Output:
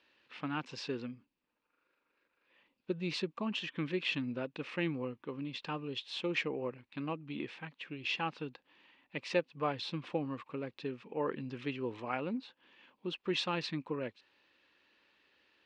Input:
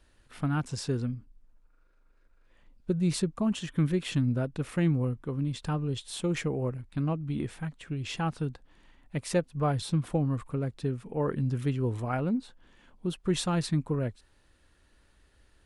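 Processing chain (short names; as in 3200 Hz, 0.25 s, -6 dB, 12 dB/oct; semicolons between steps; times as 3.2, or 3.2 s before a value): speaker cabinet 370–4600 Hz, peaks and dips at 420 Hz -3 dB, 680 Hz -8 dB, 1400 Hz -5 dB, 2600 Hz +7 dB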